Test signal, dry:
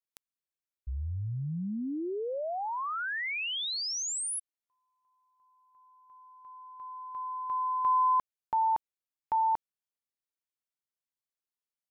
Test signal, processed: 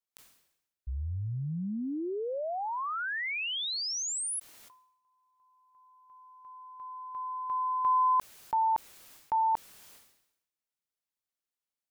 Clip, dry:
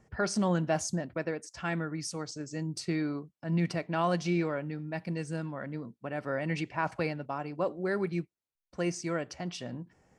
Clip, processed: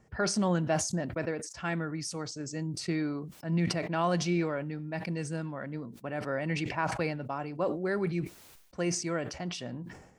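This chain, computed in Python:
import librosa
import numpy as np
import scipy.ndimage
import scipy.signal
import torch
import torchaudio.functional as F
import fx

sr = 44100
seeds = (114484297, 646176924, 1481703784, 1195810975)

y = fx.sustainer(x, sr, db_per_s=70.0)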